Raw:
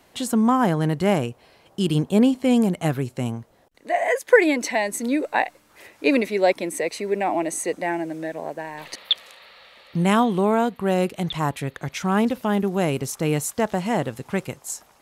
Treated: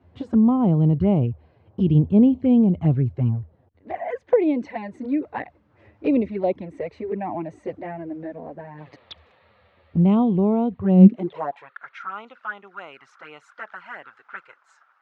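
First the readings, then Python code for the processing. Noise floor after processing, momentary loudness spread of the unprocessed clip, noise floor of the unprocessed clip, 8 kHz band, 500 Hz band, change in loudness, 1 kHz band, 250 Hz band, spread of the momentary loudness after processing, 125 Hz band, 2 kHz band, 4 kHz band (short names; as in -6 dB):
-62 dBFS, 12 LU, -57 dBFS, under -30 dB, -4.0 dB, +2.5 dB, -7.5 dB, +2.5 dB, 22 LU, +5.5 dB, -11.5 dB, under -15 dB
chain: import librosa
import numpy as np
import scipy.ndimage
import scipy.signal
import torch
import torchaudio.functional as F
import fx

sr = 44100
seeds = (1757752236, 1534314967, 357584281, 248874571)

y = fx.low_shelf(x, sr, hz=250.0, db=8.0)
y = fx.env_flanger(y, sr, rest_ms=11.8, full_db=-13.5)
y = fx.filter_sweep_highpass(y, sr, from_hz=80.0, to_hz=1400.0, start_s=10.75, end_s=11.74, q=6.8)
y = fx.spacing_loss(y, sr, db_at_10k=43)
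y = y * librosa.db_to_amplitude(-1.5)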